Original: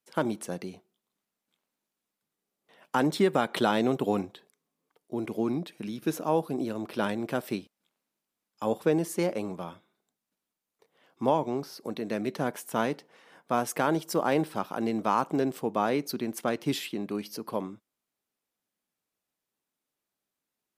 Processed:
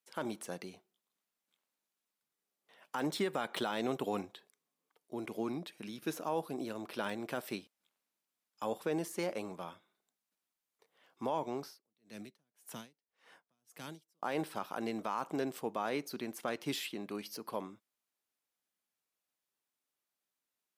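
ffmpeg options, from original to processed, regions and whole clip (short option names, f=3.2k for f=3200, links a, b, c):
-filter_complex "[0:a]asettb=1/sr,asplit=3[a][b][c];[a]atrim=end=11.644[d];[b]atrim=start=11.64:end=14.23,asetpts=PTS-STARTPTS,afade=t=in:d=0.004:c=qsin,afade=t=out:st=2.586:d=0.004:c=qsin,acrossover=split=240|3000[e][f][g];[f]acompressor=threshold=-44dB:ratio=4:attack=3.2:release=140:knee=2.83:detection=peak[h];[e][h][g]amix=inputs=3:normalize=0,aeval=exprs='val(0)*pow(10,-40*(0.5-0.5*cos(2*PI*1.8*n/s))/20)':c=same[i];[c]atrim=start=14.226[j];[d][i]acrossfade=d=0.004:c1=hsin:c2=qsin[k];[k][j]acrossfade=d=0.004:c1=qsin:c2=hsin,deesser=0.75,lowshelf=f=480:g=-9,alimiter=limit=-21.5dB:level=0:latency=1:release=31,volume=-2.5dB"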